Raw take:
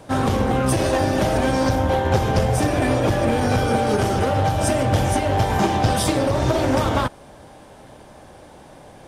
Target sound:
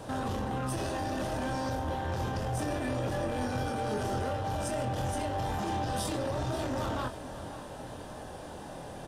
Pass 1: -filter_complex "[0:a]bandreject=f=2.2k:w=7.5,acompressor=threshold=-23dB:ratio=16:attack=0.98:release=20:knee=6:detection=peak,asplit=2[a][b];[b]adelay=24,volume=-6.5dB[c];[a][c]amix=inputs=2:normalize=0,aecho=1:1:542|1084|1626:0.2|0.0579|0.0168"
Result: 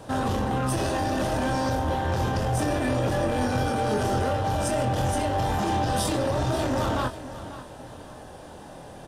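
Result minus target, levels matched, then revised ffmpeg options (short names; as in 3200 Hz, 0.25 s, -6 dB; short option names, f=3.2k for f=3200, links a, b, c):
compressor: peak gain reduction -7.5 dB
-filter_complex "[0:a]bandreject=f=2.2k:w=7.5,acompressor=threshold=-31dB:ratio=16:attack=0.98:release=20:knee=6:detection=peak,asplit=2[a][b];[b]adelay=24,volume=-6.5dB[c];[a][c]amix=inputs=2:normalize=0,aecho=1:1:542|1084|1626:0.2|0.0579|0.0168"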